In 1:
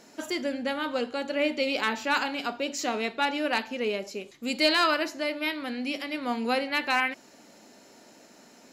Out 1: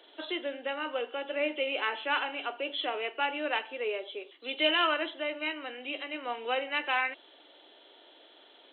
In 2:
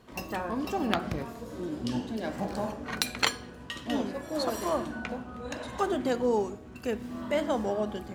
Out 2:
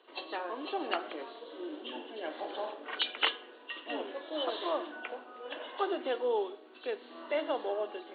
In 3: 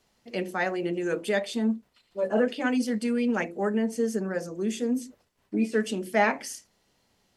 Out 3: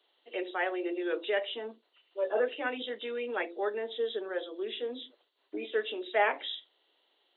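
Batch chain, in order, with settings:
knee-point frequency compression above 2.7 kHz 4:1; steep high-pass 310 Hz 48 dB/octave; trim -3.5 dB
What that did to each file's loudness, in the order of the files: -4.0 LU, -4.5 LU, -5.5 LU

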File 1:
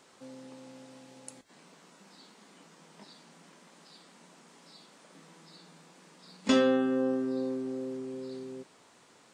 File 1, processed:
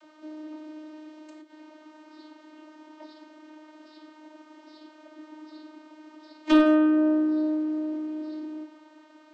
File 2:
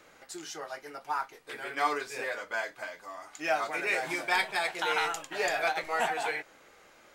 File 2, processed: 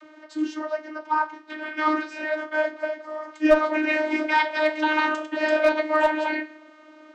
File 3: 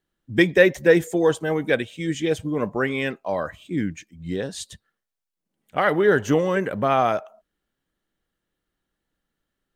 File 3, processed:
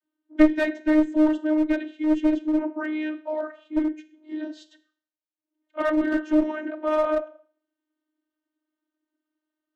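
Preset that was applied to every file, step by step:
octave divider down 2 oct, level +1 dB; low-pass 5 kHz 12 dB/octave; Schroeder reverb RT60 0.49 s, combs from 26 ms, DRR 13 dB; vocoder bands 32, saw 308 Hz; one-sided clip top -22 dBFS, bottom -4 dBFS; normalise loudness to -24 LUFS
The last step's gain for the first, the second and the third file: +6.0 dB, +9.5 dB, +0.5 dB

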